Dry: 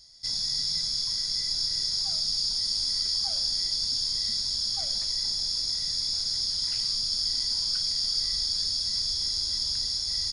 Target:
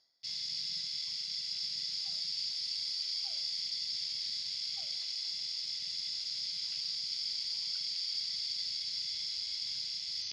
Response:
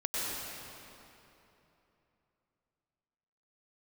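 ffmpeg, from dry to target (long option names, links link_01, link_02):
-af "afwtdn=0.0141,areverse,acompressor=mode=upward:threshold=-31dB:ratio=2.5,areverse,highpass=330,lowpass=2800,volume=2dB"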